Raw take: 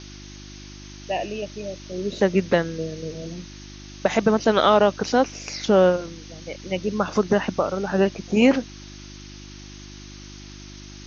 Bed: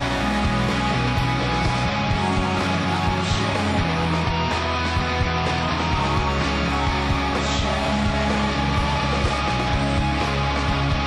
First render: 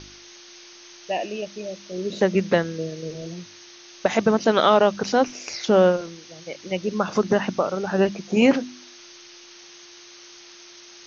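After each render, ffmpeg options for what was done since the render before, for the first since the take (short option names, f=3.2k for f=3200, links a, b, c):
-af "bandreject=f=50:t=h:w=4,bandreject=f=100:t=h:w=4,bandreject=f=150:t=h:w=4,bandreject=f=200:t=h:w=4,bandreject=f=250:t=h:w=4,bandreject=f=300:t=h:w=4"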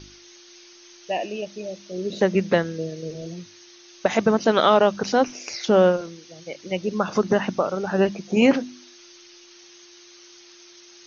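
-af "afftdn=nr=6:nf=-46"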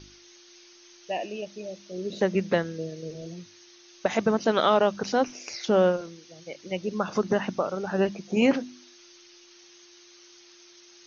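-af "volume=-4.5dB"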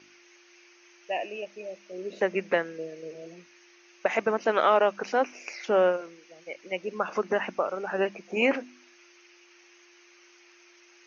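-af "highpass=370,highshelf=f=3k:t=q:w=3:g=-6"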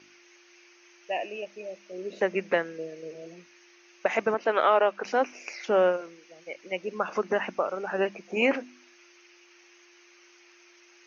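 -filter_complex "[0:a]asettb=1/sr,asplit=3[a][b][c];[a]atrim=end=4.344[d];[b]atrim=start=4.34:end=5.05,asetpts=PTS-STARTPTS,afade=t=in:d=0.004:c=qsin,afade=t=out:st=0.706:d=0.004:c=qsin,highpass=280,lowpass=4.2k[e];[c]atrim=start=5.046[f];[d][e]acrossfade=d=0.004:c1=hsin:c2=qsin[g];[g][f]acrossfade=d=0.004:c1=qsin:c2=hsin"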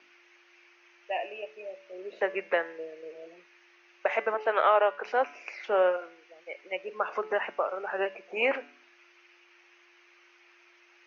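-filter_complex "[0:a]acrossover=split=380 3700:gain=0.0708 1 0.112[a][b][c];[a][b][c]amix=inputs=3:normalize=0,bandreject=f=143.8:t=h:w=4,bandreject=f=287.6:t=h:w=4,bandreject=f=431.4:t=h:w=4,bandreject=f=575.2:t=h:w=4,bandreject=f=719:t=h:w=4,bandreject=f=862.8:t=h:w=4,bandreject=f=1.0066k:t=h:w=4,bandreject=f=1.1504k:t=h:w=4,bandreject=f=1.2942k:t=h:w=4,bandreject=f=1.438k:t=h:w=4,bandreject=f=1.5818k:t=h:w=4,bandreject=f=1.7256k:t=h:w=4,bandreject=f=1.8694k:t=h:w=4,bandreject=f=2.0132k:t=h:w=4,bandreject=f=2.157k:t=h:w=4,bandreject=f=2.3008k:t=h:w=4,bandreject=f=2.4446k:t=h:w=4,bandreject=f=2.5884k:t=h:w=4,bandreject=f=2.7322k:t=h:w=4,bandreject=f=2.876k:t=h:w=4,bandreject=f=3.0198k:t=h:w=4,bandreject=f=3.1636k:t=h:w=4,bandreject=f=3.3074k:t=h:w=4,bandreject=f=3.4512k:t=h:w=4,bandreject=f=3.595k:t=h:w=4,bandreject=f=3.7388k:t=h:w=4,bandreject=f=3.8826k:t=h:w=4,bandreject=f=4.0264k:t=h:w=4,bandreject=f=4.1702k:t=h:w=4,bandreject=f=4.314k:t=h:w=4,bandreject=f=4.4578k:t=h:w=4,bandreject=f=4.6016k:t=h:w=4,bandreject=f=4.7454k:t=h:w=4"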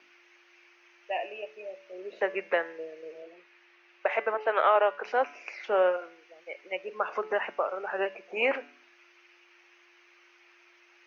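-filter_complex "[0:a]asettb=1/sr,asplit=3[a][b][c];[a]atrim=end=3.224[d];[b]atrim=start=3.22:end=4.76,asetpts=PTS-STARTPTS,afade=t=in:d=0.004:c=qsin,afade=t=out:st=1.536:d=0.004:c=qsin,highpass=230,lowpass=4.7k[e];[c]atrim=start=4.756[f];[d][e]acrossfade=d=0.004:c1=hsin:c2=qsin[g];[g][f]acrossfade=d=0.004:c1=qsin:c2=hsin"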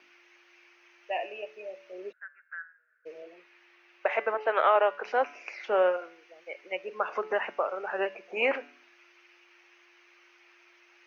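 -filter_complex "[0:a]asplit=3[a][b][c];[a]afade=t=out:st=2.11:d=0.02[d];[b]asuperpass=centerf=1500:order=4:qfactor=6.5,afade=t=in:st=2.11:d=0.02,afade=t=out:st=3.05:d=0.02[e];[c]afade=t=in:st=3.05:d=0.02[f];[d][e][f]amix=inputs=3:normalize=0"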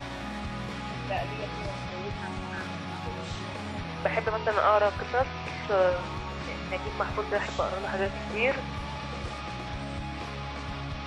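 -filter_complex "[1:a]volume=-14.5dB[a];[0:a][a]amix=inputs=2:normalize=0"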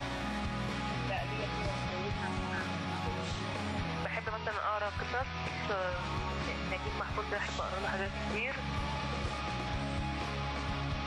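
-filter_complex "[0:a]acrossover=split=230|840|3300[a][b][c][d];[b]acompressor=threshold=-39dB:ratio=6[e];[a][e][c][d]amix=inputs=4:normalize=0,alimiter=level_in=0.5dB:limit=-24dB:level=0:latency=1:release=222,volume=-0.5dB"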